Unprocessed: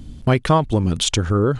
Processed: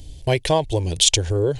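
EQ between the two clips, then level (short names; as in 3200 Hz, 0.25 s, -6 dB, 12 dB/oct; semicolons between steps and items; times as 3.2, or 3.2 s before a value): tilt shelf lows -3.5 dB, about 1400 Hz; fixed phaser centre 530 Hz, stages 4; +3.5 dB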